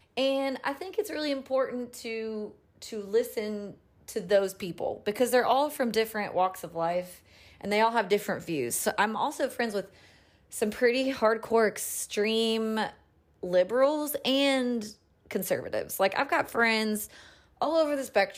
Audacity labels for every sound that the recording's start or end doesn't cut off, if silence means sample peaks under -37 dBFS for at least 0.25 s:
2.820000	3.710000	sound
4.080000	7.110000	sound
7.610000	9.850000	sound
10.530000	12.900000	sound
13.430000	14.910000	sound
15.310000	17.060000	sound